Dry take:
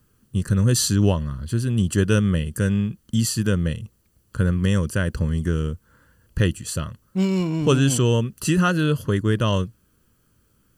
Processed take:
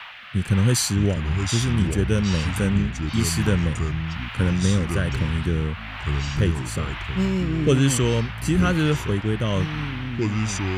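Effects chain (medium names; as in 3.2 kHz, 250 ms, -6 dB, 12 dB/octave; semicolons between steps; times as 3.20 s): band noise 770–3100 Hz -35 dBFS; rotary cabinet horn 1.1 Hz; ever faster or slower copies 526 ms, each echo -4 st, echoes 3, each echo -6 dB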